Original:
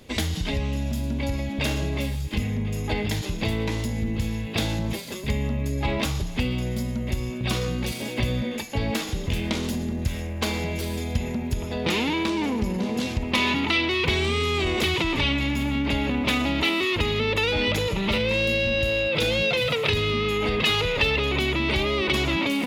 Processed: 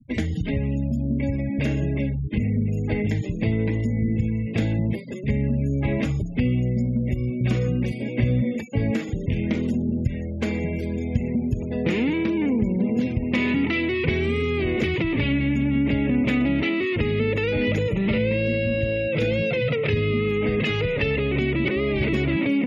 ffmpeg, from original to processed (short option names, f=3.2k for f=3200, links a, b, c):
-filter_complex "[0:a]asplit=3[a][b][c];[a]atrim=end=21.652[d];[b]atrim=start=21.648:end=22.132,asetpts=PTS-STARTPTS,areverse[e];[c]atrim=start=22.128[f];[d][e]acrossfade=d=0.004:c1=hsin:c2=hsin[g];[g][f]acrossfade=d=0.004:c1=hsin:c2=hsin,afftfilt=real='re*gte(hypot(re,im),0.0224)':imag='im*gte(hypot(re,im),0.0224)':win_size=1024:overlap=0.75,acrossover=split=7000[h][i];[i]acompressor=threshold=-56dB:ratio=4:attack=1:release=60[j];[h][j]amix=inputs=2:normalize=0,equalizer=f=125:t=o:w=1:g=10,equalizer=f=250:t=o:w=1:g=7,equalizer=f=500:t=o:w=1:g=6,equalizer=f=1k:t=o:w=1:g=-8,equalizer=f=2k:t=o:w=1:g=8,equalizer=f=4k:t=o:w=1:g=-11,equalizer=f=8k:t=o:w=1:g=3,volume=-4.5dB"